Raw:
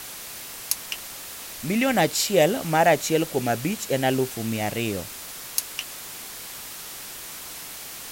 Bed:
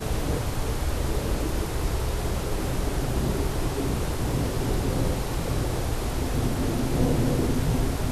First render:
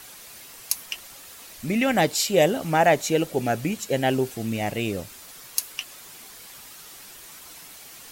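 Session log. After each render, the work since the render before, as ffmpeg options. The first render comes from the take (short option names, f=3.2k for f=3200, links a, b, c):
-af "afftdn=nr=8:nf=-38"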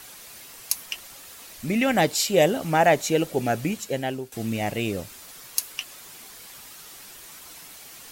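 -filter_complex "[0:a]asplit=2[a][b];[a]atrim=end=4.32,asetpts=PTS-STARTPTS,afade=t=out:st=3.7:d=0.62:silence=0.16788[c];[b]atrim=start=4.32,asetpts=PTS-STARTPTS,afade=t=in:d=0.004:c=hsin:silence=0.16788[d];[c][d]concat=n=2:v=0:a=1"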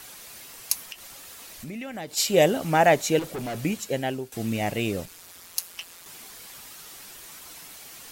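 -filter_complex "[0:a]asplit=3[a][b][c];[a]afade=t=out:st=0.84:d=0.02[d];[b]acompressor=threshold=-37dB:ratio=3:attack=3.2:release=140:knee=1:detection=peak,afade=t=in:st=0.84:d=0.02,afade=t=out:st=2.16:d=0.02[e];[c]afade=t=in:st=2.16:d=0.02[f];[d][e][f]amix=inputs=3:normalize=0,asettb=1/sr,asplit=3[g][h][i];[g]atrim=end=3.194[j];[h]atrim=start=3.19:end=3.59,asetpts=PTS-STARTPTS,afade=t=in:d=0.004:c=qsin,afade=t=out:st=0.396:d=0.004:c=qsin,volume=29.5dB,asoftclip=hard,volume=-29.5dB[k];[i]atrim=start=3.586[l];[j][k]acrossfade=d=0.004:c1=hsin:c2=qsin[m];[m][l]acrossfade=d=0.004:c1=qsin:c2=hsin,asettb=1/sr,asplit=3[n][o][p];[n]atrim=end=5.054[q];[o]atrim=start=5.05:end=6.06,asetpts=PTS-STARTPTS,afade=t=in:d=0.004:c=qsin,afade=t=out:st=1.006:d=0.004:c=qsin,aeval=exprs='val(0)*sin(2*PI*87*n/s)':c=same[r];[p]atrim=start=6.056[s];[q][r]acrossfade=d=0.004:c1=hsin:c2=qsin[t];[t][s]acrossfade=d=0.004:c1=qsin:c2=hsin"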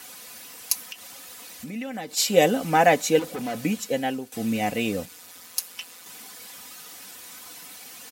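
-af "highpass=f=80:w=0.5412,highpass=f=80:w=1.3066,aecho=1:1:4:0.58"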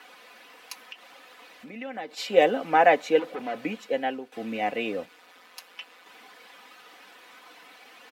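-filter_complex "[0:a]acrossover=split=280 3400:gain=0.1 1 0.0708[a][b][c];[a][b][c]amix=inputs=3:normalize=0"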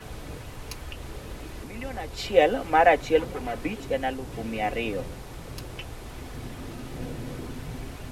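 -filter_complex "[1:a]volume=-12.5dB[a];[0:a][a]amix=inputs=2:normalize=0"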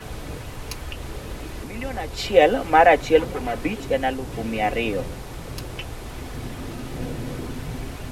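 -af "volume=5dB,alimiter=limit=-3dB:level=0:latency=1"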